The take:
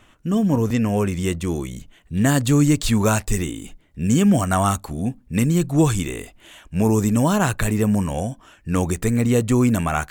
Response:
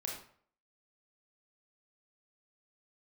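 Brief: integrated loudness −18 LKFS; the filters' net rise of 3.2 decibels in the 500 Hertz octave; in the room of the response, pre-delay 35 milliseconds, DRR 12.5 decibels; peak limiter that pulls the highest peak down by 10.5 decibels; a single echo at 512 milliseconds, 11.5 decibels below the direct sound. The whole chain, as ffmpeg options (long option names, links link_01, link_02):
-filter_complex "[0:a]equalizer=frequency=500:width_type=o:gain=4,alimiter=limit=-14.5dB:level=0:latency=1,aecho=1:1:512:0.266,asplit=2[link_01][link_02];[1:a]atrim=start_sample=2205,adelay=35[link_03];[link_02][link_03]afir=irnorm=-1:irlink=0,volume=-13dB[link_04];[link_01][link_04]amix=inputs=2:normalize=0,volume=6dB"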